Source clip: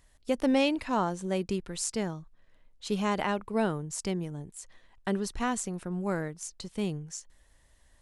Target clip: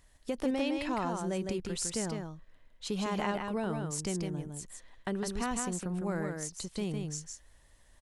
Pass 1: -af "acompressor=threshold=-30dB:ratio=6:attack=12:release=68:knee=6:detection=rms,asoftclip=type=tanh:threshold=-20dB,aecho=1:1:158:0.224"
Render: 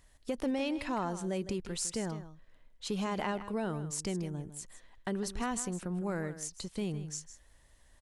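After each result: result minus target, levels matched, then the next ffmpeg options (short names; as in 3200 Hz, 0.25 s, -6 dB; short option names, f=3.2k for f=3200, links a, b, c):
soft clip: distortion +15 dB; echo-to-direct -8.5 dB
-af "acompressor=threshold=-30dB:ratio=6:attack=12:release=68:knee=6:detection=rms,asoftclip=type=tanh:threshold=-12dB,aecho=1:1:158:0.224"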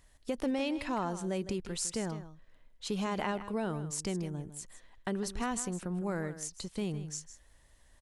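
echo-to-direct -8.5 dB
-af "acompressor=threshold=-30dB:ratio=6:attack=12:release=68:knee=6:detection=rms,asoftclip=type=tanh:threshold=-12dB,aecho=1:1:158:0.596"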